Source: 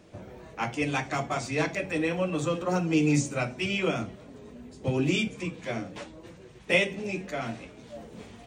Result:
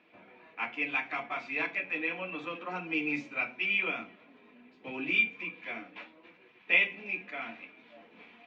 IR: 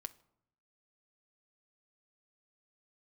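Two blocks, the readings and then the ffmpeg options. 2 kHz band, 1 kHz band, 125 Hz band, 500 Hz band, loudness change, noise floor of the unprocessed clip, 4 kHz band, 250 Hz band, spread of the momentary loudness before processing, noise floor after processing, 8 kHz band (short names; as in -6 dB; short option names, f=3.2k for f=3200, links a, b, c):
+2.5 dB, -6.0 dB, -22.0 dB, -12.5 dB, -3.0 dB, -50 dBFS, -5.0 dB, -12.0 dB, 21 LU, -61 dBFS, under -25 dB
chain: -filter_complex "[0:a]highpass=360,equalizer=f=410:t=q:w=4:g=-8,equalizer=f=610:t=q:w=4:g=-8,equalizer=f=2.4k:t=q:w=4:g=10,lowpass=f=3.4k:w=0.5412,lowpass=f=3.4k:w=1.3066[a];[1:a]atrim=start_sample=2205,asetrate=79380,aresample=44100[b];[a][b]afir=irnorm=-1:irlink=0,volume=4.5dB"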